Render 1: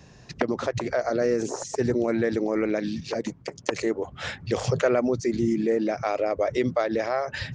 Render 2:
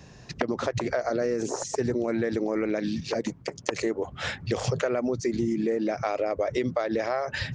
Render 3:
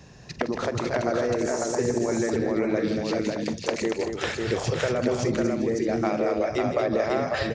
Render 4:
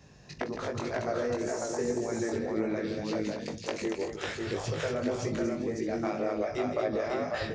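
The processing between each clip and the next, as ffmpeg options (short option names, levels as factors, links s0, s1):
-af "acompressor=threshold=0.0631:ratio=6,volume=1.19"
-af "aecho=1:1:45|161|232|385|549|613:0.168|0.316|0.473|0.126|0.668|0.237"
-af "flanger=delay=18.5:depth=2.5:speed=1.9,volume=0.668"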